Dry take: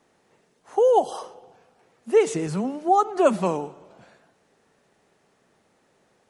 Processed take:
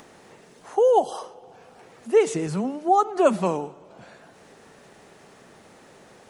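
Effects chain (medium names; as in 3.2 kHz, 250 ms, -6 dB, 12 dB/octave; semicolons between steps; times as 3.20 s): upward compressor, threshold -37 dBFS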